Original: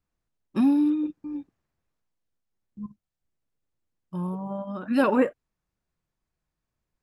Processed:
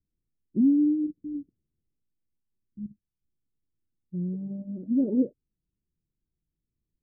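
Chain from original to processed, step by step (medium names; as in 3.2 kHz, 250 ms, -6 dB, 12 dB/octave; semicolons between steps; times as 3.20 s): inverse Chebyshev low-pass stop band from 1 kHz, stop band 50 dB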